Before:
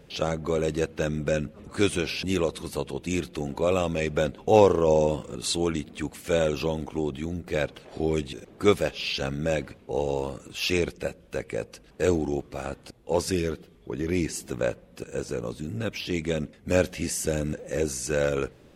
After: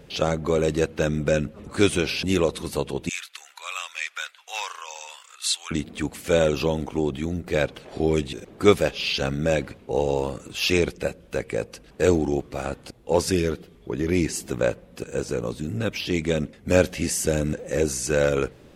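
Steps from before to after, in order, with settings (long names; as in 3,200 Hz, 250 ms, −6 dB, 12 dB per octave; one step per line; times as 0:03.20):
0:03.09–0:05.71: high-pass filter 1,300 Hz 24 dB per octave
level +4 dB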